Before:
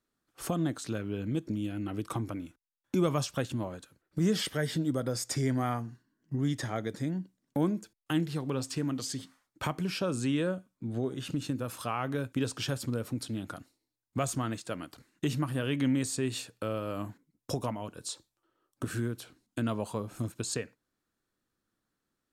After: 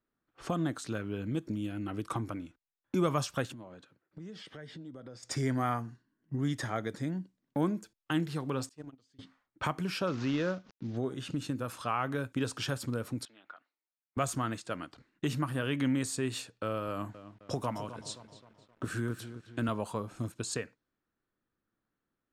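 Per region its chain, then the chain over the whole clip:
3.51–5.23 s: high-pass 120 Hz + compression 4:1, threshold -43 dBFS
8.69–9.19 s: gate -29 dBFS, range -28 dB + treble shelf 7.5 kHz +10.5 dB
10.07–10.97 s: CVSD coder 32 kbps + swell ahead of each attack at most 130 dB/s
13.25–14.17 s: high-pass 1.1 kHz + tape spacing loss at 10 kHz 26 dB
16.88–19.69 s: high-pass 44 Hz 24 dB/octave + bit-crushed delay 262 ms, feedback 55%, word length 9-bit, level -11 dB
whole clip: level-controlled noise filter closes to 2.5 kHz, open at -30 dBFS; dynamic bell 1.3 kHz, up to +5 dB, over -47 dBFS, Q 1; trim -2 dB

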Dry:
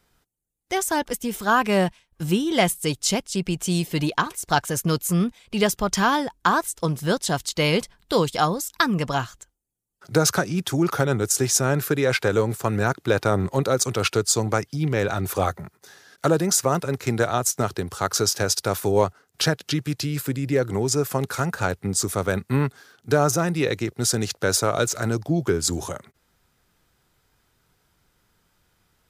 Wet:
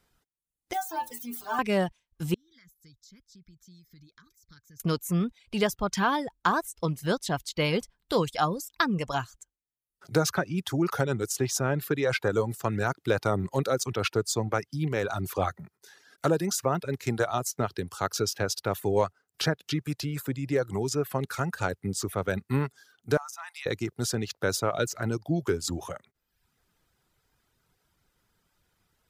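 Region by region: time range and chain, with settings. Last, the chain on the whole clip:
0.73–1.59 s: zero-crossing glitches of -18.5 dBFS + peaking EQ 810 Hz +9.5 dB 0.5 oct + inharmonic resonator 77 Hz, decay 0.54 s, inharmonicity 0.008
2.34–4.80 s: amplifier tone stack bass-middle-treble 6-0-2 + compression 8:1, threshold -43 dBFS + static phaser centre 2.8 kHz, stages 6
23.17–23.66 s: steep high-pass 800 Hz 48 dB/octave + compression 4:1, threshold -31 dBFS
whole clip: reverb removal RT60 0.7 s; dynamic bell 8.8 kHz, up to -7 dB, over -39 dBFS, Q 0.74; trim -4.5 dB

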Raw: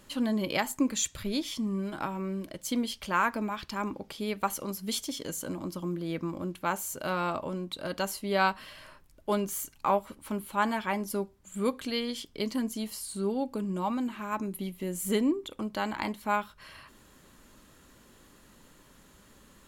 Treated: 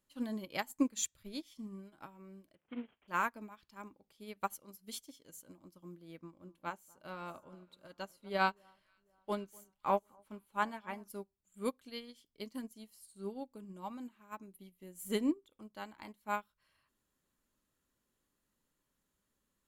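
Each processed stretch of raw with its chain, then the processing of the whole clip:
2.55–3.08 s: CVSD coder 16 kbps + high-pass 110 Hz 6 dB/octave
6.19–11.08 s: treble shelf 8 kHz -8.5 dB + echo whose repeats swap between lows and highs 247 ms, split 1.4 kHz, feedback 63%, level -13 dB
whole clip: treble shelf 8.9 kHz +7.5 dB; upward expansion 2.5:1, over -38 dBFS; trim -2.5 dB

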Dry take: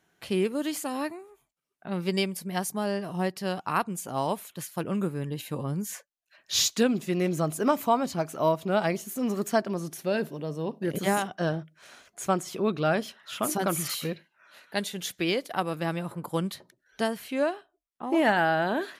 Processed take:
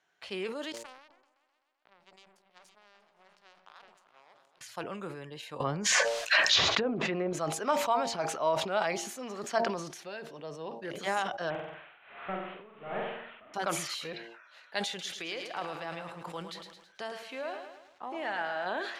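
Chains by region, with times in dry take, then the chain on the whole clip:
0.72–4.61 s: compression 3:1, threshold -47 dBFS + power-law waveshaper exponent 3 + delay with an opening low-pass 128 ms, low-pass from 200 Hz, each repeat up 2 oct, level -6 dB
5.60–7.33 s: low-pass that closes with the level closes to 810 Hz, closed at -21 dBFS + level flattener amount 100%
9.58–10.30 s: band-stop 590 Hz, Q 11 + compression 4:1, threshold -30 dBFS
11.50–13.54 s: one-bit delta coder 16 kbps, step -37 dBFS + flutter echo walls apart 8.1 m, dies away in 0.95 s + logarithmic tremolo 1.3 Hz, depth 21 dB
14.88–18.66 s: compression 3:1, threshold -28 dBFS + bit-crushed delay 109 ms, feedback 55%, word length 9-bit, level -8.5 dB
whole clip: three-band isolator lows -15 dB, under 490 Hz, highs -23 dB, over 7 kHz; de-hum 115.5 Hz, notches 8; decay stretcher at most 57 dB/s; trim -2.5 dB

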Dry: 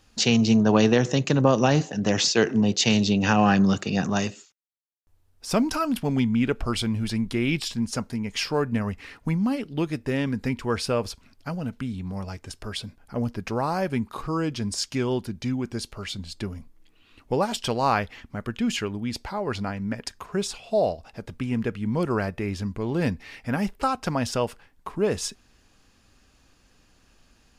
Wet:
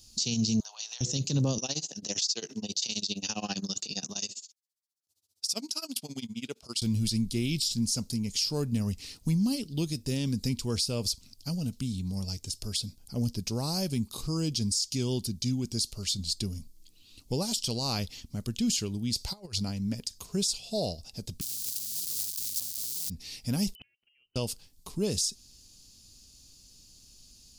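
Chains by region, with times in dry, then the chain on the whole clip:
0.60–1.01 s: steep high-pass 800 Hz + compression 4:1, threshold -39 dBFS
1.58–6.82 s: frequency weighting A + tremolo 15 Hz, depth 94%
19.15–19.61 s: peaking EQ 260 Hz -11.5 dB 0.73 oct + compressor with a negative ratio -35 dBFS, ratio -0.5
21.41–23.10 s: zero-crossing glitches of -18 dBFS + spectrum-flattening compressor 4:1
23.75–24.36 s: frequency inversion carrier 3 kHz + inverted gate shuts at -29 dBFS, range -39 dB
whole clip: FFT filter 160 Hz 0 dB, 1.7 kHz -19 dB, 4.6 kHz +12 dB; compression, threshold -20 dBFS; peak limiter -18.5 dBFS

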